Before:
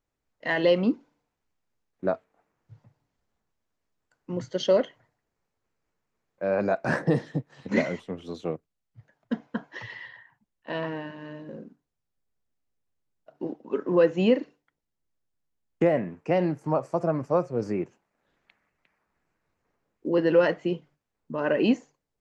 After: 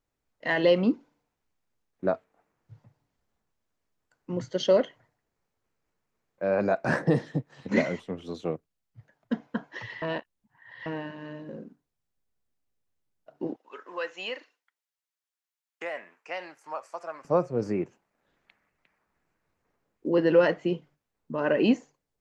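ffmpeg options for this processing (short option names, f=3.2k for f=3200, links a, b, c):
-filter_complex "[0:a]asettb=1/sr,asplit=3[a][b][c];[a]atrim=end=13.564[d];[b]atrim=start=13.56:end=17.25,asetpts=PTS-STARTPTS,afade=t=in:d=0.004:c=qsin,afade=t=out:st=3.686:d=0.004:c=qsin,highpass=1.2k[e];[c]atrim=start=17.246[f];[d][e]acrossfade=d=0.004:c1=hsin:c2=qsin[g];[g][f]acrossfade=d=0.004:c1=qsin:c2=hsin,asplit=3[h][i][j];[h]atrim=end=10.022[k];[i]atrim=start=10.018:end=10.862,asetpts=PTS-STARTPTS,areverse[l];[j]atrim=start=10.858[m];[k][l]acrossfade=d=0.004:c1=hsin:c2=hsin[n];[n][m]acrossfade=d=0.004:c1=hsin:c2=hsin"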